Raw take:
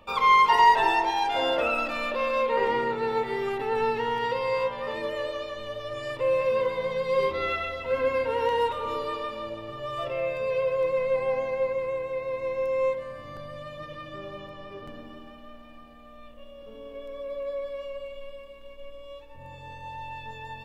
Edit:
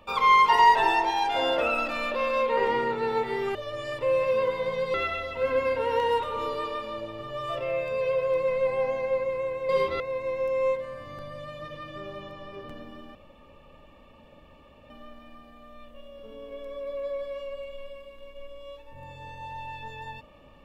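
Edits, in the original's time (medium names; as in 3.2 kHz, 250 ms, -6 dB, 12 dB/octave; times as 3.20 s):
3.55–5.73 s: delete
7.12–7.43 s: move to 12.18 s
15.33 s: insert room tone 1.75 s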